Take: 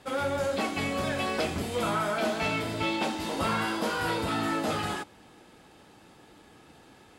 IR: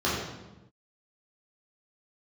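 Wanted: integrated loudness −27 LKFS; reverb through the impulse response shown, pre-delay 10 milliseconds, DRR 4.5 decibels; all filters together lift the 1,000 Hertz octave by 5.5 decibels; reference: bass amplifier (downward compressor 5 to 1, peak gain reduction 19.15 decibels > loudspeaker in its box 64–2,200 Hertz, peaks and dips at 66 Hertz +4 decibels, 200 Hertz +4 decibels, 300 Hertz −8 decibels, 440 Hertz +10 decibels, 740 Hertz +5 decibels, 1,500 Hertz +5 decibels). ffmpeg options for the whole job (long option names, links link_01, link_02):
-filter_complex "[0:a]equalizer=frequency=1000:width_type=o:gain=3.5,asplit=2[link_01][link_02];[1:a]atrim=start_sample=2205,adelay=10[link_03];[link_02][link_03]afir=irnorm=-1:irlink=0,volume=-18dB[link_04];[link_01][link_04]amix=inputs=2:normalize=0,acompressor=threshold=-43dB:ratio=5,highpass=frequency=64:width=0.5412,highpass=frequency=64:width=1.3066,equalizer=frequency=66:width_type=q:width=4:gain=4,equalizer=frequency=200:width_type=q:width=4:gain=4,equalizer=frequency=300:width_type=q:width=4:gain=-8,equalizer=frequency=440:width_type=q:width=4:gain=10,equalizer=frequency=740:width_type=q:width=4:gain=5,equalizer=frequency=1500:width_type=q:width=4:gain=5,lowpass=frequency=2200:width=0.5412,lowpass=frequency=2200:width=1.3066,volume=15dB"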